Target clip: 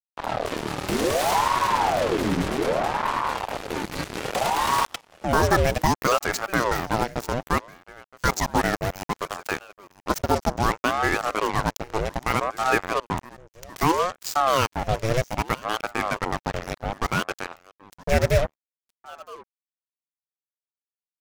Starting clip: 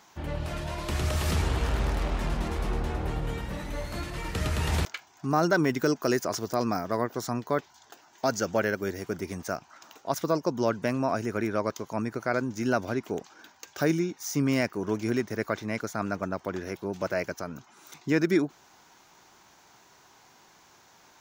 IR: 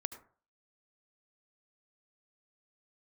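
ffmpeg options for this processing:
-af "acrusher=bits=4:mix=0:aa=0.5,aecho=1:1:968:0.0841,aeval=exprs='val(0)*sin(2*PI*630*n/s+630*0.65/0.63*sin(2*PI*0.63*n/s))':c=same,volume=7dB"

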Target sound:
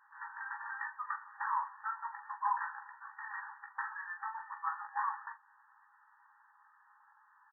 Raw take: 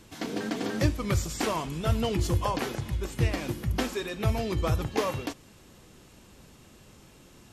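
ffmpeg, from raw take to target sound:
-filter_complex "[0:a]afftfilt=real='re*between(b*sr/4096,790,1900)':imag='im*between(b*sr/4096,790,1900)':win_size=4096:overlap=0.75,asplit=2[a][b];[b]aecho=0:1:17|42:0.562|0.376[c];[a][c]amix=inputs=2:normalize=0,volume=-1.5dB"

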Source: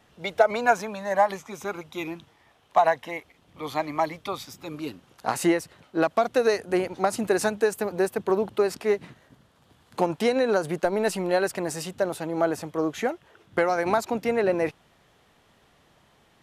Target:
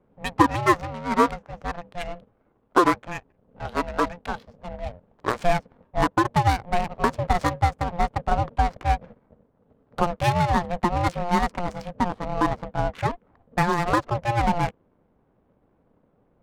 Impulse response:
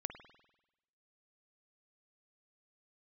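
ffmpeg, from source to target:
-af "aeval=exprs='val(0)*sin(2*PI*350*n/s)':c=same,adynamicsmooth=sensitivity=6.5:basefreq=580,volume=4.5dB"

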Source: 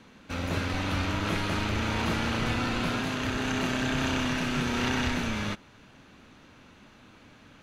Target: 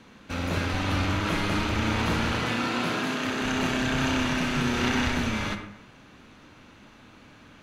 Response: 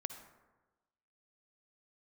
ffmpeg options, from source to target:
-filter_complex "[0:a]asettb=1/sr,asplit=3[a][b][c];[a]atrim=end=2.394[d];[b]atrim=start=2.39:end=3.42,asetpts=PTS-STARTPTS,afade=t=in:d=0.004:c=qsin,afade=t=out:st=1.026:d=0.004:c=qsin,highpass=160[e];[c]atrim=start=3.416[f];[d][e]acrossfade=d=0.004:c1=hsin:c2=qsin[g];[g][f]acrossfade=d=0.004:c1=qsin:c2=hsin[h];[1:a]atrim=start_sample=2205,asetrate=61740,aresample=44100[i];[h][i]afir=irnorm=-1:irlink=0,volume=7dB"

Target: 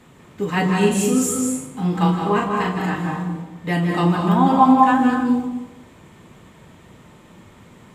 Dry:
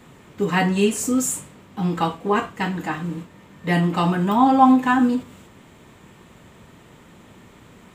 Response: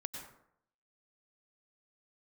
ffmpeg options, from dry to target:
-filter_complex "[0:a]asettb=1/sr,asplit=3[a][b][c];[a]atrim=end=0.774[d];[b]atrim=start=0.77:end=3.14,asetpts=PTS-STARTPTS,afade=t=in:d=0.004:c=qsin,afade=t=out:st=2.366:d=0.004:c=qsin,asplit=2[e][f];[f]adelay=39,volume=-4dB[g];[e][g]amix=inputs=2:normalize=0,atrim=end_sample=104517[h];[c]atrim=start=3.136[i];[d][h]acrossfade=d=0.004:c1=hsin:c2=qsin[j];[j][i]acrossfade=d=0.004:c1=qsin:c2=hsin[k];[1:a]atrim=start_sample=2205,asetrate=27342,aresample=44100[l];[k][l]afir=irnorm=-1:irlink=0,volume=-1dB"

